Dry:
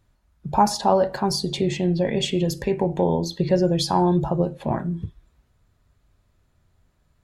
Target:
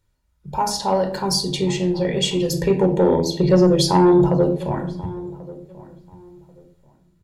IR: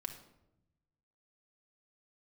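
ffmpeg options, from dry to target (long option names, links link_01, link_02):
-filter_complex "[1:a]atrim=start_sample=2205,asetrate=79380,aresample=44100[link_01];[0:a][link_01]afir=irnorm=-1:irlink=0,dynaudnorm=framelen=210:gausssize=7:maxgain=6.5dB,asettb=1/sr,asplit=3[link_02][link_03][link_04];[link_02]atrim=end=2.534[link_05];[link_03]atrim=start=2.53:end=4.58,asetpts=PTS-STARTPTS,afade=type=in:duration=0.004:curve=qsin,afade=type=out:start_time=2.046:duration=0.004:curve=qsin,equalizer=frequency=260:width=0.34:gain=6[link_06];[link_04]atrim=start=4.576[link_07];[link_05][link_06]acrossfade=duration=0.004:curve1=hsin:curve2=qsin[link_08];[link_08][link_07]acrossfade=duration=0.004:curve1=qsin:curve2=hsin,asoftclip=type=tanh:threshold=-6.5dB,highshelf=frequency=3100:gain=7.5,asplit=2[link_09][link_10];[link_10]adelay=1087,lowpass=frequency=1300:poles=1,volume=-18.5dB,asplit=2[link_11][link_12];[link_12]adelay=1087,lowpass=frequency=1300:poles=1,volume=0.25[link_13];[link_09][link_11][link_13]amix=inputs=3:normalize=0"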